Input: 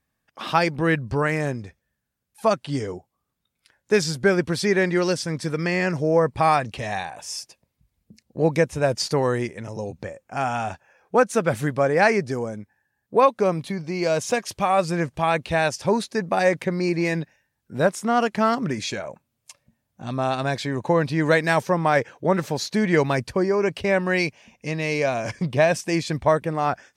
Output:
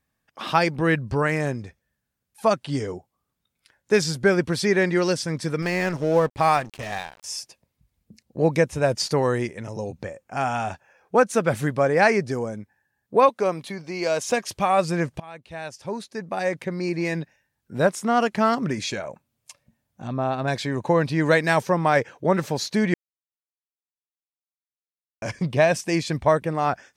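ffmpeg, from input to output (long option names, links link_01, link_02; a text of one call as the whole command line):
ffmpeg -i in.wav -filter_complex "[0:a]asettb=1/sr,asplit=3[link_01][link_02][link_03];[link_01]atrim=end=5.624[link_04];[link_02]atrim=start=5.62:end=7.24,asetpts=PTS-STARTPTS,afade=type=in:duration=0.004:curve=qsin,afade=type=out:start_time=1.616:duration=0.004:curve=qsin,aeval=exprs='sgn(val(0))*max(abs(val(0))-0.0168,0)':channel_layout=same[link_05];[link_03]atrim=start=7.236[link_06];[link_04][link_05]acrossfade=duration=0.004:curve1=hsin:curve2=qsin[link_07];[link_07][link_06]acrossfade=duration=0.004:curve1=qsin:curve2=hsin,asettb=1/sr,asplit=3[link_08][link_09][link_10];[link_08]atrim=end=13.294[link_11];[link_09]atrim=start=13.29:end=14.31,asetpts=PTS-STARTPTS,afade=type=in:duration=0.004:curve=qsin,afade=type=out:start_time=1.016:duration=0.004:curve=qsin,highpass=frequency=360:poles=1[link_12];[link_10]atrim=start=14.306[link_13];[link_11][link_12]acrossfade=duration=0.004:curve1=hsin:curve2=qsin[link_14];[link_14][link_13]acrossfade=duration=0.004:curve1=qsin:curve2=hsin,asettb=1/sr,asplit=3[link_15][link_16][link_17];[link_15]atrim=end=20.074[link_18];[link_16]atrim=start=20.07:end=20.48,asetpts=PTS-STARTPTS,afade=type=in:duration=0.004:curve=qsin,afade=type=out:start_time=0.406:duration=0.004:curve=qsin,lowpass=frequency=1300:poles=1[link_19];[link_17]atrim=start=20.476[link_20];[link_18][link_19]acrossfade=duration=0.004:curve1=hsin:curve2=qsin[link_21];[link_21][link_20]acrossfade=duration=0.004:curve1=qsin:curve2=hsin,asplit=4[link_22][link_23][link_24][link_25];[link_22]atrim=end=15.2,asetpts=PTS-STARTPTS,afade=type=out:start_time=15.196:duration=0.004:curve=hsin:silence=0.0668344[link_26];[link_23]atrim=start=15.2:end=22.94,asetpts=PTS-STARTPTS,afade=type=in:duration=2.57:silence=0.0668344,afade=type=out:start_time=7.736:duration=0.004:curve=hsin[link_27];[link_24]atrim=start=22.94:end=25.22,asetpts=PTS-STARTPTS,volume=0[link_28];[link_25]atrim=start=25.22,asetpts=PTS-STARTPTS,afade=type=in:duration=0.004:curve=hsin[link_29];[link_26][link_27][link_28][link_29]concat=n=4:v=0:a=1" out.wav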